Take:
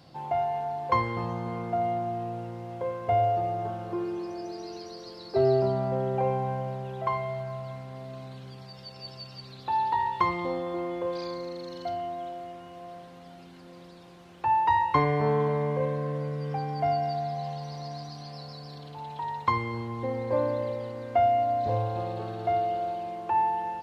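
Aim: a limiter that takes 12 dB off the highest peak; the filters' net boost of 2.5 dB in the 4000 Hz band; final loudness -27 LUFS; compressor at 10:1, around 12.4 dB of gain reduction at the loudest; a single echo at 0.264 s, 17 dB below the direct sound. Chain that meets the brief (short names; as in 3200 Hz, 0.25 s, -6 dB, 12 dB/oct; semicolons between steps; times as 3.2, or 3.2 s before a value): bell 4000 Hz +3 dB; compressor 10:1, threshold -32 dBFS; limiter -31.5 dBFS; echo 0.264 s -17 dB; gain +12.5 dB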